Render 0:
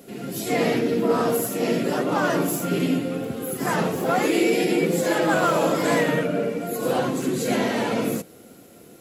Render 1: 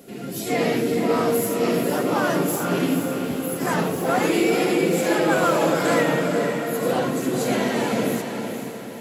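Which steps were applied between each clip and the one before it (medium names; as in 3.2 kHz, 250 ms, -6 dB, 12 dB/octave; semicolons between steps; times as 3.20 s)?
echo that smears into a reverb 471 ms, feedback 47%, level -6.5 dB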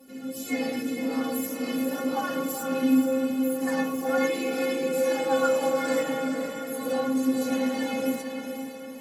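inharmonic resonator 260 Hz, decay 0.26 s, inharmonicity 0.008; trim +6.5 dB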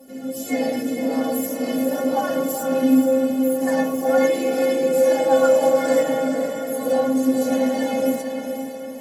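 graphic EQ with 31 bands 630 Hz +12 dB, 1.25 kHz -8 dB, 2.5 kHz -7 dB, 4 kHz -5 dB; trim +5 dB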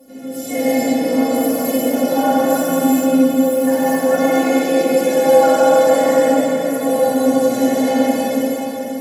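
gated-style reverb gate 480 ms flat, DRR -7 dB; trim -1 dB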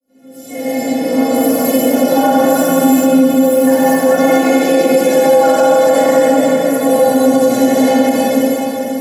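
fade-in on the opening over 1.65 s; loudness maximiser +6.5 dB; trim -1 dB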